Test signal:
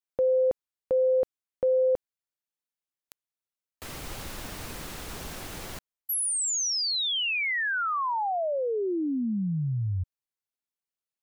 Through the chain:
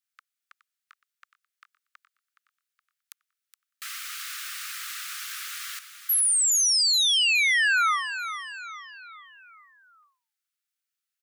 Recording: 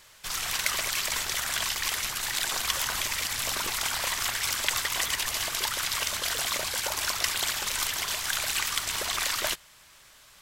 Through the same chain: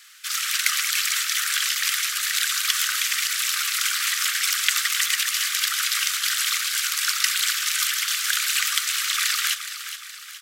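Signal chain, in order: steep high-pass 1.2 kHz 96 dB/octave; on a send: feedback delay 419 ms, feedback 48%, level -11 dB; on the sum: trim +6 dB

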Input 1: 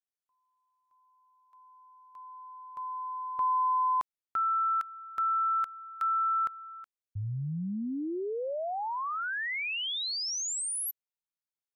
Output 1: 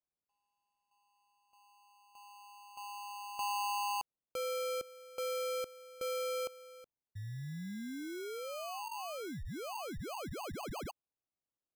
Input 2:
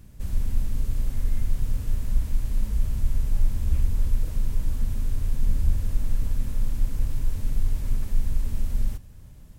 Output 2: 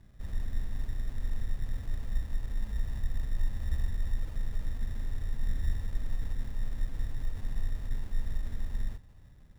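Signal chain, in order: sample-and-hold 24×; trim -8.5 dB

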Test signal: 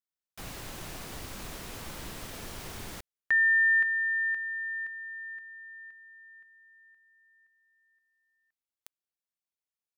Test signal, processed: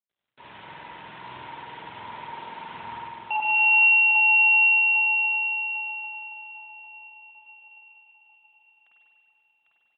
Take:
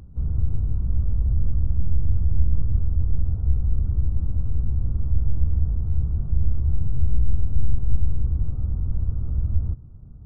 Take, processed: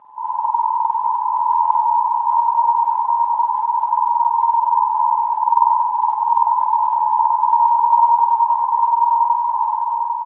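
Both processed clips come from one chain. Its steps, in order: peaking EQ 200 Hz -14 dB 1.4 oct; ring modulator 940 Hz; on a send: feedback delay 799 ms, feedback 45%, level -5 dB; on the sum: spring tank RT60 2 s, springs 47 ms, chirp 45 ms, DRR -7 dB; AMR-NB 12.2 kbps 8 kHz

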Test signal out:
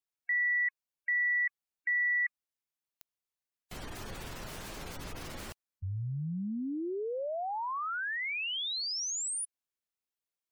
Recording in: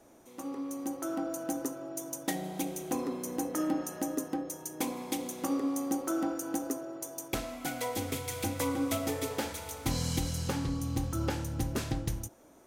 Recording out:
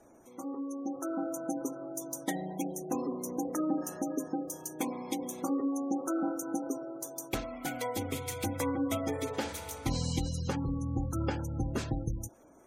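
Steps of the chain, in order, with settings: spectral gate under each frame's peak -25 dB strong

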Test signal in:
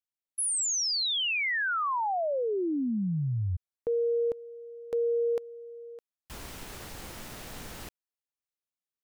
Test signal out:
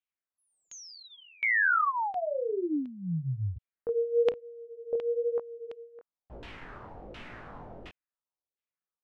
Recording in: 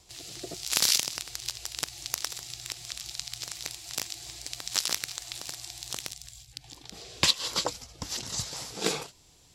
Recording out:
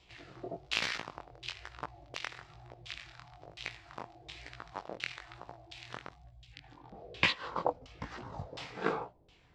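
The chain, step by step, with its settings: overload inside the chain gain 9.5 dB; chorus 1.1 Hz, delay 16.5 ms, depth 7.9 ms; LFO low-pass saw down 1.4 Hz 490–3100 Hz

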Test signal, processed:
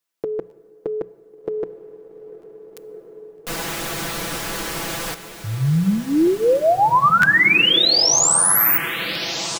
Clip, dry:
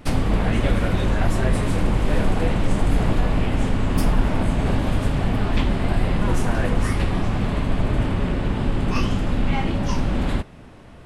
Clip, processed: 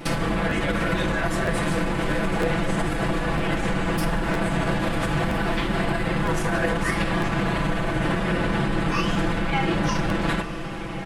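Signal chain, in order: dynamic bell 1.6 kHz, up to +5 dB, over -44 dBFS, Q 1.8; compression, threshold -20 dBFS; peak limiter -21 dBFS; bass shelf 90 Hz -11 dB; hum notches 60/120/180 Hz; comb 6 ms, depth 92%; echo that smears into a reverb 1489 ms, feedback 52%, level -11 dB; plate-style reverb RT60 2.6 s, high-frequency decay 0.7×, DRR 17 dB; crackling interface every 0.96 s, samples 512, repeat, from 0.49 s; trim +7 dB

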